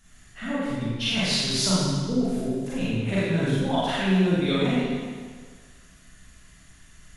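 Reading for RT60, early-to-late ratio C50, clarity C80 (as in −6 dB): 1.6 s, −4.0 dB, −1.5 dB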